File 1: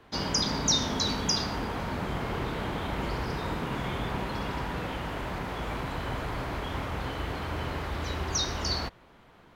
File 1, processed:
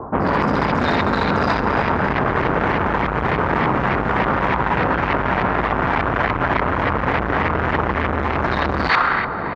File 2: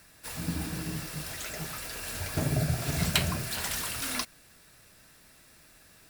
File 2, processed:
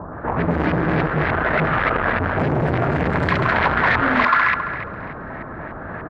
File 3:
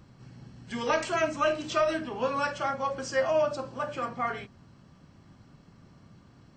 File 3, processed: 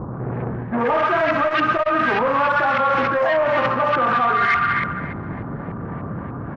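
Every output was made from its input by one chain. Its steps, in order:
running median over 15 samples
high-pass filter 59 Hz 6 dB per octave
on a send: feedback echo with a high-pass in the loop 68 ms, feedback 85%, high-pass 800 Hz, level −6 dB
on the sum: sine wavefolder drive 5 dB, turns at −14 dBFS
auto-filter low-pass saw up 3.4 Hz 1,000–2,100 Hz
three-band delay without the direct sound lows, highs, mids 70/130 ms, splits 1,300/5,800 Hz
low-pass that shuts in the quiet parts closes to 1,200 Hz, open at −17.5 dBFS
brickwall limiter −17.5 dBFS
high-shelf EQ 2,600 Hz +11 dB
reversed playback
downward compressor 6 to 1, threshold −34 dBFS
reversed playback
saturating transformer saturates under 920 Hz
loudness normalisation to −19 LKFS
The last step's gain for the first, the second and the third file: +21.5, +21.5, +18.5 decibels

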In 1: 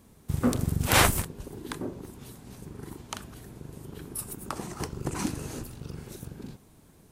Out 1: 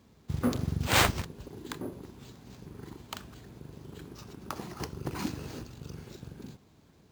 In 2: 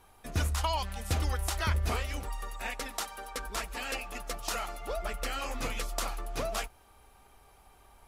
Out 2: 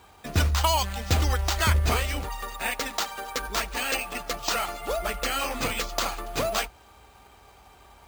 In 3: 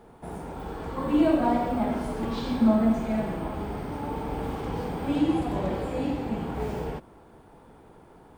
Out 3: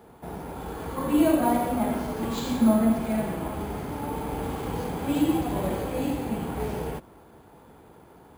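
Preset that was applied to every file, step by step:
high-pass filter 46 Hz 24 dB per octave
high-shelf EQ 5,400 Hz +12 dB
bad sample-rate conversion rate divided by 4×, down filtered, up hold
normalise the peak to −9 dBFS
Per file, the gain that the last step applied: −3.5, +7.0, +0.5 decibels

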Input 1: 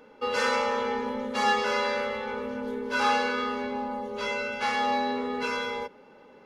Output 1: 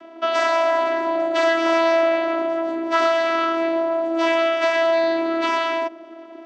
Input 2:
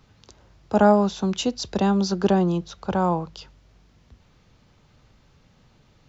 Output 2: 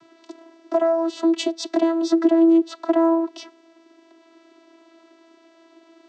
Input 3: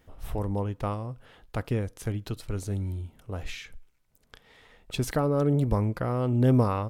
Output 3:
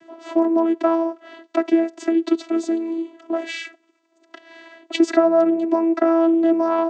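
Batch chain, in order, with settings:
downward compressor 8 to 1, threshold −26 dBFS
channel vocoder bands 16, saw 330 Hz
loudness normalisation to −20 LKFS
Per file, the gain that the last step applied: +12.5, +13.0, +14.5 decibels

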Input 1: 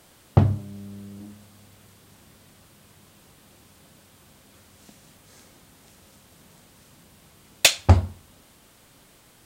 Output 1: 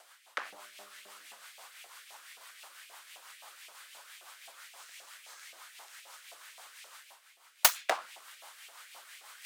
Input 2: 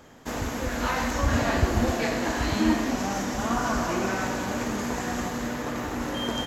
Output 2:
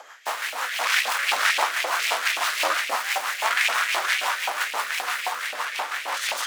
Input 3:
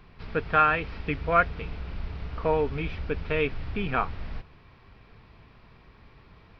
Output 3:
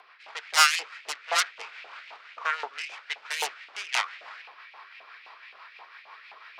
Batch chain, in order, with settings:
phase distortion by the signal itself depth 0.96 ms
rotating-speaker cabinet horn 6 Hz
auto-filter high-pass saw up 3.8 Hz 710–2,600 Hz
high-pass filter 460 Hz 12 dB per octave
reversed playback
upward compression, threshold −38 dBFS
reversed playback
normalise the peak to −6 dBFS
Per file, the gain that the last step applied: −3.5, +7.5, +1.0 decibels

